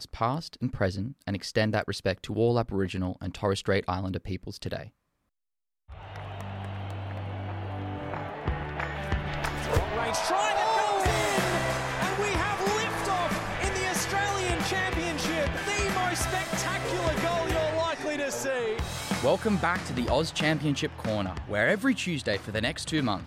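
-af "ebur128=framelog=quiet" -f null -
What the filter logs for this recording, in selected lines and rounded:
Integrated loudness:
  I:         -28.7 LUFS
  Threshold: -38.9 LUFS
Loudness range:
  LRA:         9.5 LU
  Threshold: -49.0 LUFS
  LRA low:   -36.3 LUFS
  LRA high:  -26.8 LUFS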